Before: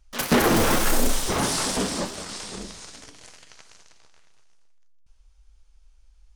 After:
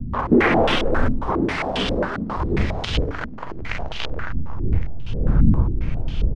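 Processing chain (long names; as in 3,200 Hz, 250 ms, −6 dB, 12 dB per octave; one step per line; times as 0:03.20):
camcorder AGC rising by 69 dB per second
wind on the microphone 82 Hz −24 dBFS
echo with shifted repeats 239 ms, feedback 55%, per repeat +38 Hz, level −20 dB
low-pass on a step sequencer 7.4 Hz 240–3,100 Hz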